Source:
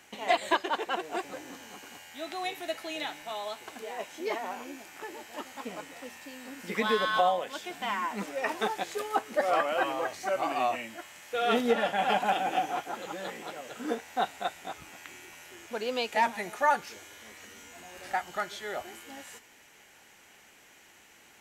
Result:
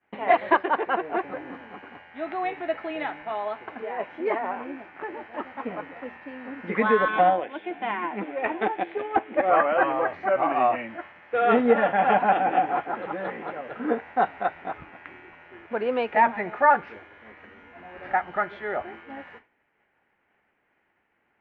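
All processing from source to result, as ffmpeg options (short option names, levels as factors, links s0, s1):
-filter_complex "[0:a]asettb=1/sr,asplit=3[s0][s1][s2];[s0]atrim=end=7.084[s3];[s1]atrim=start=7.08:end=9.5,asetpts=PTS-STARTPTS,afade=t=in:d=0.004:c=qsin,afade=t=out:st=2.416:d=0.004:c=qsin,aeval=exprs='(tanh(8.91*val(0)+0.8)-tanh(0.8))/8.91':c=same,highpass=110,equalizer=f=150:t=q:w=4:g=-7,equalizer=f=330:t=q:w=4:g=10,equalizer=f=750:t=q:w=4:g=5,equalizer=f=1200:t=q:w=4:g=-5,equalizer=f=2400:t=q:w=4:g=5,equalizer=f=3400:t=q:w=4:g=9,lowpass=f=3700:w=0.5412,lowpass=f=3700:w=1.3066[s4];[s2]atrim=start=9.496[s5];[s3][s4]acrossfade=d=0.004:c1=hsin:c2=qsin[s6];[s6][s5]acrossfade=d=0.004:c1=qsin:c2=hsin,acontrast=83,agate=range=0.0224:threshold=0.0126:ratio=3:detection=peak,lowpass=f=2100:w=0.5412,lowpass=f=2100:w=1.3066"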